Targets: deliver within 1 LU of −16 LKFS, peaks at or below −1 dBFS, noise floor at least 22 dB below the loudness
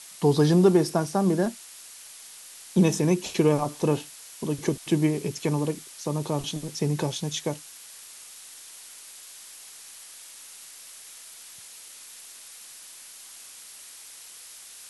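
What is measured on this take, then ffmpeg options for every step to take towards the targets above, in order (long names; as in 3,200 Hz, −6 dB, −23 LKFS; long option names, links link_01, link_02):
background noise floor −46 dBFS; target noise floor −47 dBFS; integrated loudness −25.0 LKFS; sample peak −8.0 dBFS; target loudness −16.0 LKFS
→ -af "afftdn=noise_reduction=6:noise_floor=-46"
-af "volume=9dB,alimiter=limit=-1dB:level=0:latency=1"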